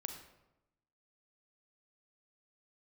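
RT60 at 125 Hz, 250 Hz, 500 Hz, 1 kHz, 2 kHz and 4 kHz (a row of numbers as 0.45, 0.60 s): 1.1, 1.1, 0.95, 0.90, 0.75, 0.60 s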